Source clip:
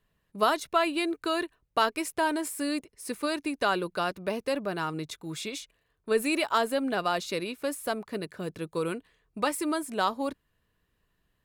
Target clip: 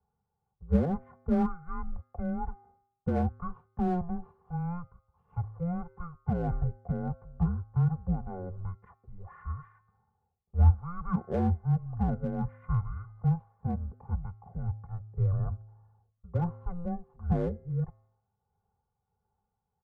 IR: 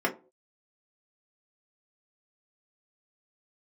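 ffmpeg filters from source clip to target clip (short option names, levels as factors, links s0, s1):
-filter_complex "[0:a]lowshelf=f=240:g=-6,aecho=1:1:1.8:0.92,bandreject=f=243.1:t=h:w=4,bandreject=f=486.2:t=h:w=4,bandreject=f=729.3:t=h:w=4,bandreject=f=972.4:t=h:w=4,bandreject=f=1215.5:t=h:w=4,bandreject=f=1458.6:t=h:w=4,bandreject=f=1701.7:t=h:w=4,bandreject=f=1944.8:t=h:w=4,bandreject=f=2187.9:t=h:w=4,bandreject=f=2431:t=h:w=4,bandreject=f=2674.1:t=h:w=4,bandreject=f=2917.2:t=h:w=4,bandreject=f=3160.3:t=h:w=4,bandreject=f=3403.4:t=h:w=4,bandreject=f=3646.5:t=h:w=4,bandreject=f=3889.6:t=h:w=4,bandreject=f=4132.7:t=h:w=4,bandreject=f=4375.8:t=h:w=4,bandreject=f=4618.9:t=h:w=4,bandreject=f=4862:t=h:w=4,bandreject=f=5105.1:t=h:w=4,bandreject=f=5348.2:t=h:w=4,bandreject=f=5591.3:t=h:w=4,bandreject=f=5834.4:t=h:w=4,bandreject=f=6077.5:t=h:w=4,bandreject=f=6320.6:t=h:w=4,bandreject=f=6563.7:t=h:w=4,highpass=f=290:t=q:w=0.5412,highpass=f=290:t=q:w=1.307,lowpass=f=2100:t=q:w=0.5176,lowpass=f=2100:t=q:w=0.7071,lowpass=f=2100:t=q:w=1.932,afreqshift=-300,tremolo=f=2.6:d=0.38,asplit=2[s0][s1];[s1]asoftclip=type=hard:threshold=0.075,volume=0.299[s2];[s0][s2]amix=inputs=2:normalize=0,asetrate=25442,aresample=44100,equalizer=f=480:w=0.55:g=-13,volume=1.41"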